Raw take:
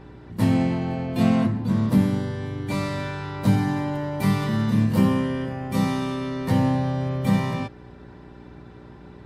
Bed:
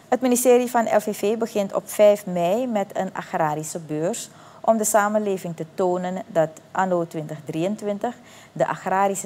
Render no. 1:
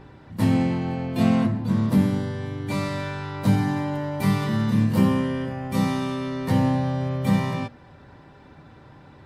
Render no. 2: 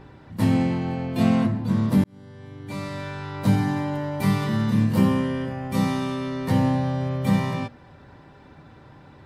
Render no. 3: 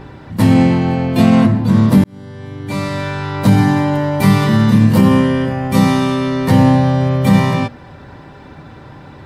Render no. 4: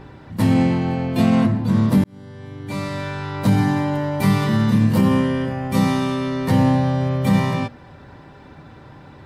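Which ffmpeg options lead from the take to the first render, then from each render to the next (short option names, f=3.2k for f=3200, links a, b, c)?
-af "bandreject=f=60:t=h:w=4,bandreject=f=120:t=h:w=4,bandreject=f=180:t=h:w=4,bandreject=f=240:t=h:w=4,bandreject=f=300:t=h:w=4,bandreject=f=360:t=h:w=4,bandreject=f=420:t=h:w=4,bandreject=f=480:t=h:w=4,bandreject=f=540:t=h:w=4,bandreject=f=600:t=h:w=4,bandreject=f=660:t=h:w=4"
-filter_complex "[0:a]asplit=2[a][b];[a]atrim=end=2.04,asetpts=PTS-STARTPTS,afade=t=out:st=2.036:d=0.004:c=hsin[c];[b]atrim=start=2.04,asetpts=PTS-STARTPTS,afade=t=in:d=1.43[d];[c][d]concat=n=2:v=0:a=1"
-af "alimiter=level_in=11.5dB:limit=-1dB:release=50:level=0:latency=1"
-af "volume=-6dB"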